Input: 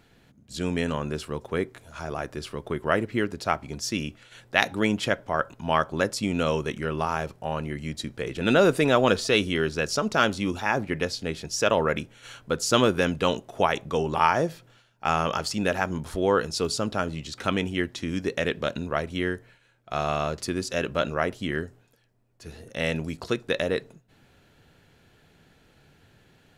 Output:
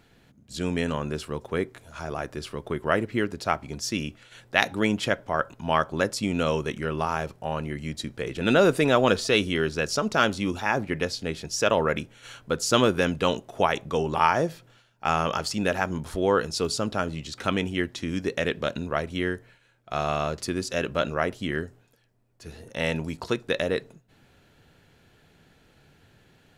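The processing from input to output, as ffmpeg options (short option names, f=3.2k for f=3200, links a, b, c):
-filter_complex "[0:a]asettb=1/sr,asplit=3[a][b][c];[a]atrim=end=22.624[d];[b]atrim=start=22.62:end=23.38,asetpts=PTS-STARTPTS,afade=t=in:d=0.004:c=qsin,afade=t=out:st=0.756:d=0.004:c=qsin,equalizer=f=920:w=5.8:g=7.5[e];[c]atrim=start=23.376[f];[d][e]acrossfade=d=0.004:c1=hsin:c2=qsin[g];[g][f]acrossfade=d=0.004:c1=qsin:c2=hsin"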